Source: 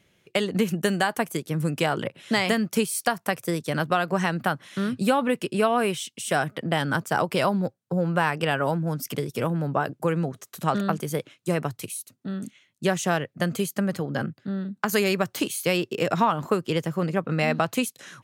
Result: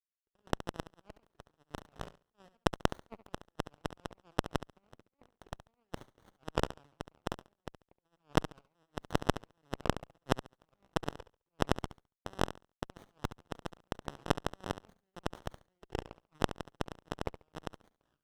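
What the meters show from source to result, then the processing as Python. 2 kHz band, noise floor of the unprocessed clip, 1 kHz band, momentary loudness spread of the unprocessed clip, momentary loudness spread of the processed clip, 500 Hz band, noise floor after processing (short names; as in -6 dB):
-16.5 dB, -69 dBFS, -13.5 dB, 8 LU, 16 LU, -15.0 dB, under -85 dBFS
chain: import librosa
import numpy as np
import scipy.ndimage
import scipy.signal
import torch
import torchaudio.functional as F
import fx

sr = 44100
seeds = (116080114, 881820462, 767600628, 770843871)

p1 = fx.rattle_buzz(x, sr, strikes_db=-34.0, level_db=-15.0)
p2 = fx.high_shelf(p1, sr, hz=7300.0, db=-7.5)
p3 = fx.over_compress(p2, sr, threshold_db=-30.0, ratio=-0.5)
p4 = fx.bass_treble(p3, sr, bass_db=-8, treble_db=-9)
p5 = fx.power_curve(p4, sr, exponent=3.0)
p6 = p5 + fx.room_flutter(p5, sr, wall_m=12.0, rt60_s=0.31, dry=0)
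p7 = fx.running_max(p6, sr, window=17)
y = p7 * librosa.db_to_amplitude(9.5)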